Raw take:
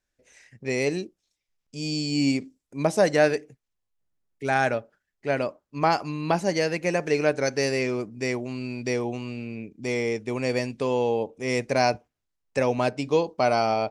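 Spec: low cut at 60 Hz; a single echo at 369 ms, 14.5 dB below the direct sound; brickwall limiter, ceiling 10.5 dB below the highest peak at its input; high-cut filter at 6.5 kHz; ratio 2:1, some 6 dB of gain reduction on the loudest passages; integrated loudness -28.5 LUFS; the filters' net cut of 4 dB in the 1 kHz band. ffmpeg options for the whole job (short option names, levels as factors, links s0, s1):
-af "highpass=60,lowpass=6500,equalizer=f=1000:t=o:g=-6,acompressor=threshold=0.0398:ratio=2,alimiter=level_in=1.06:limit=0.0631:level=0:latency=1,volume=0.944,aecho=1:1:369:0.188,volume=2.24"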